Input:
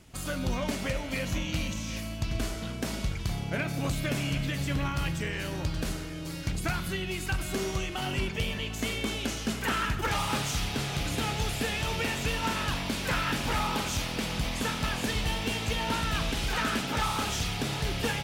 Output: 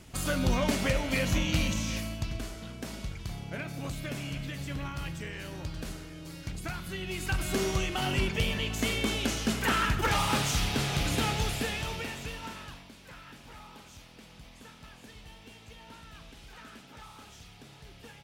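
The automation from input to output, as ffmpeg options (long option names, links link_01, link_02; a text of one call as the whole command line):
ffmpeg -i in.wav -af "volume=12dB,afade=type=out:start_time=1.8:duration=0.62:silence=0.316228,afade=type=in:start_time=6.86:duration=0.69:silence=0.375837,afade=type=out:start_time=11.19:duration=0.87:silence=0.354813,afade=type=out:start_time=12.06:duration=0.85:silence=0.223872" out.wav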